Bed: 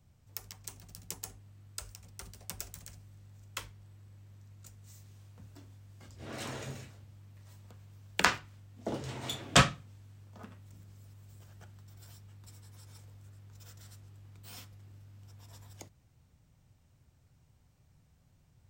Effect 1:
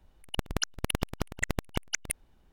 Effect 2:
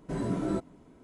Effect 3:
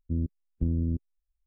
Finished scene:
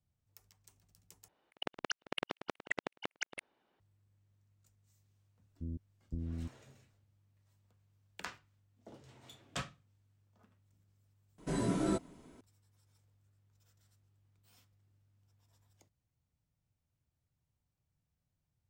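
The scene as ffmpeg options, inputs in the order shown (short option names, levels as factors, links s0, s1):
-filter_complex "[0:a]volume=0.119[s0];[1:a]highpass=360,lowpass=3700[s1];[2:a]highshelf=f=2400:g=10[s2];[s0]asplit=3[s3][s4][s5];[s3]atrim=end=1.284[s6];[s1]atrim=end=2.52,asetpts=PTS-STARTPTS,volume=0.668[s7];[s4]atrim=start=3.796:end=11.384[s8];[s2]atrim=end=1.03,asetpts=PTS-STARTPTS,volume=0.75[s9];[s5]atrim=start=12.406[s10];[3:a]atrim=end=1.46,asetpts=PTS-STARTPTS,volume=0.237,afade=t=in:d=0.004:c=hsin,afade=t=out:st=1.456:d=0.004:c=hsin,adelay=5510[s11];[s6][s7]acrossfade=d=0.004:c1=hsin:c2=hsin[s12];[s12][s8]acrossfade=d=0.004:c1=hsin:c2=hsin[s13];[s13][s9]acrossfade=d=0.004:c1=hsin:c2=hsin[s14];[s14][s10]acrossfade=d=0.004:c1=hsin:c2=hsin[s15];[s15][s11]amix=inputs=2:normalize=0"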